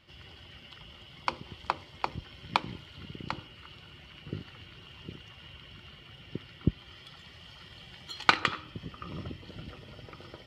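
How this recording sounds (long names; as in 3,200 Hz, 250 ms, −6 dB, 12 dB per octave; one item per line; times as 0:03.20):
background noise floor −53 dBFS
spectral slope −2.5 dB per octave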